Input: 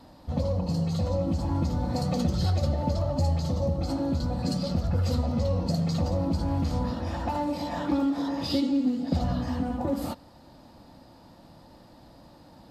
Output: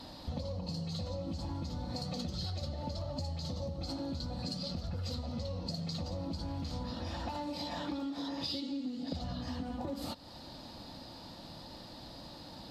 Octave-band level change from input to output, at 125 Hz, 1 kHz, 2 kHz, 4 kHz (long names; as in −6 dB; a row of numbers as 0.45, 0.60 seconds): −12.0, −10.0, −7.0, −1.5 decibels